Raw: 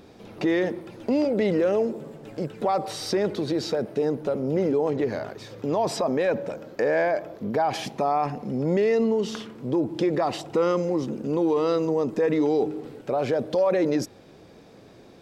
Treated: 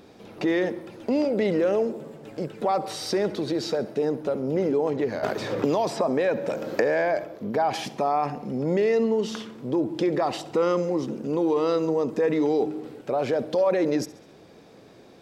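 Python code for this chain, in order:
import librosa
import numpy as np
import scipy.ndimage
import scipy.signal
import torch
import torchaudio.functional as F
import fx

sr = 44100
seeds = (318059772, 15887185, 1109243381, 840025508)

y = fx.low_shelf(x, sr, hz=98.0, db=-8.0)
y = fx.echo_feedback(y, sr, ms=68, feedback_pct=51, wet_db=-19)
y = fx.band_squash(y, sr, depth_pct=100, at=(5.23, 7.24))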